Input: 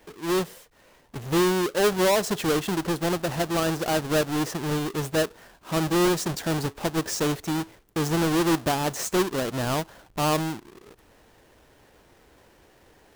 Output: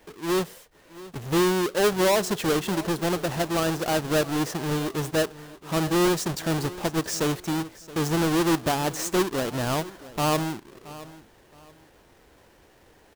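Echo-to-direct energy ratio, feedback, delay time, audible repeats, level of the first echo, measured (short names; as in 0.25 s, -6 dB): -17.5 dB, 28%, 0.673 s, 2, -18.0 dB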